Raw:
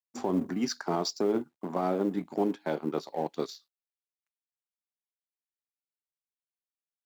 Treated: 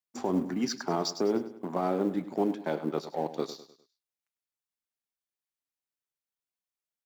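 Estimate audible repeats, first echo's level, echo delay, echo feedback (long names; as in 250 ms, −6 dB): 3, −13.5 dB, 101 ms, 41%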